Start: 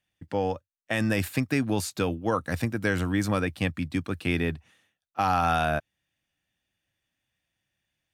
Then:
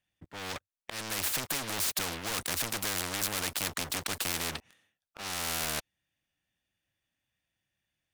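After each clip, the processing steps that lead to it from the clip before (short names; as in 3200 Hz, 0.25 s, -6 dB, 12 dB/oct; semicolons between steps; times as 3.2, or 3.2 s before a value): sample leveller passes 5; auto swell 0.476 s; spectral compressor 4:1; gain -2 dB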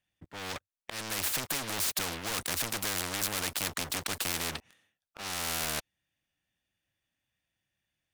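nothing audible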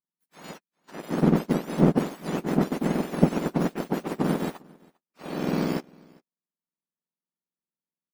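spectrum mirrored in octaves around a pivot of 1800 Hz; echo 0.4 s -19 dB; power-law curve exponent 1.4; gain +6 dB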